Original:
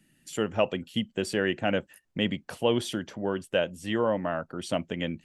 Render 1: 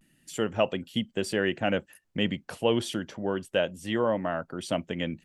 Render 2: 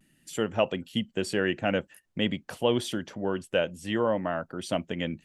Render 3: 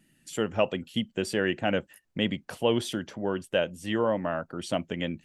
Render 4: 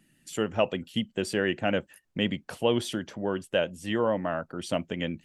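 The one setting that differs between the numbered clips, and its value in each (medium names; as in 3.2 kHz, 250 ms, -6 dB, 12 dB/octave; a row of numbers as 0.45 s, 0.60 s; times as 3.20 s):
vibrato, rate: 0.3 Hz, 0.5 Hz, 3.2 Hz, 7.1 Hz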